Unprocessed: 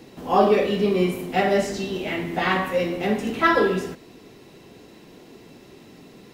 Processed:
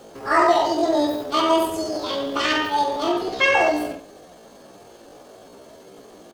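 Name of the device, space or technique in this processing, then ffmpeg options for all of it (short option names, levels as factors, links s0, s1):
chipmunk voice: -filter_complex "[0:a]asettb=1/sr,asplit=3[s0][s1][s2];[s0]atrim=end=3.134[s3];[s1]atrim=start=3.13:end=3.62,asetpts=PTS-STARTPTS,afade=t=in:d=0.004:c=qsin,afade=t=out:st=0.486:d=0.004:c=qsin,acrossover=split=4300[s4][s5];[s5]acompressor=threshold=0.00178:ratio=4:attack=1:release=60[s6];[s4][s6]amix=inputs=2:normalize=0[s7];[s2]atrim=start=3.616[s8];[s3][s7]acrossfade=d=0.004:c1=hsin:c2=qsin[s9];[s9][s8]acrossfade=d=0.004:c1=qsin:c2=hsin,asplit=2[s10][s11];[s11]adelay=65,lowpass=f=990:p=1,volume=0.708,asplit=2[s12][s13];[s13]adelay=65,lowpass=f=990:p=1,volume=0.33,asplit=2[s14][s15];[s15]adelay=65,lowpass=f=990:p=1,volume=0.33,asplit=2[s16][s17];[s17]adelay=65,lowpass=f=990:p=1,volume=0.33[s18];[s10][s12][s14][s16][s18]amix=inputs=5:normalize=0,asetrate=72056,aresample=44100,atempo=0.612027"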